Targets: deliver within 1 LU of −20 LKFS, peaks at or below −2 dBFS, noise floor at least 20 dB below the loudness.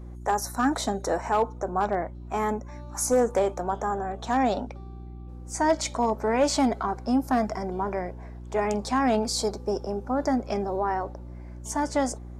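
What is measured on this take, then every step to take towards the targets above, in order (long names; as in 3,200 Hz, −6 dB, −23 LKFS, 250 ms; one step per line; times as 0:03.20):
share of clipped samples 0.3%; peaks flattened at −15.0 dBFS; mains hum 60 Hz; hum harmonics up to 360 Hz; level of the hum −38 dBFS; integrated loudness −27.0 LKFS; sample peak −15.0 dBFS; target loudness −20.0 LKFS
→ clipped peaks rebuilt −15 dBFS
hum removal 60 Hz, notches 6
level +7 dB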